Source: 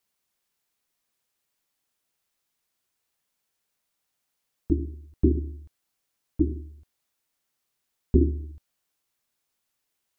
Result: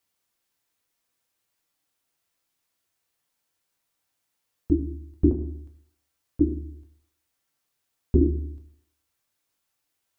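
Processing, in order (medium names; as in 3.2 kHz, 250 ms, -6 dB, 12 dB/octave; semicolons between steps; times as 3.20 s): 5.31–6.41 s: compression, threshold -29 dBFS, peak gain reduction 7.5 dB; on a send: reverberation RT60 0.75 s, pre-delay 5 ms, DRR 4 dB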